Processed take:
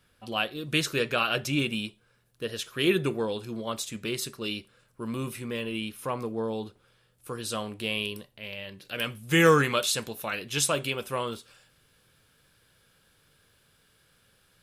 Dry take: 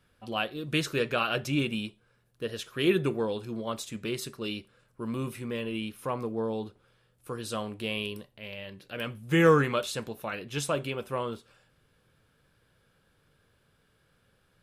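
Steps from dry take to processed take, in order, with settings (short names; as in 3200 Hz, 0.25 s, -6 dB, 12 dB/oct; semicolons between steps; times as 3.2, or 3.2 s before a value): high shelf 2300 Hz +6 dB, from 8.85 s +11.5 dB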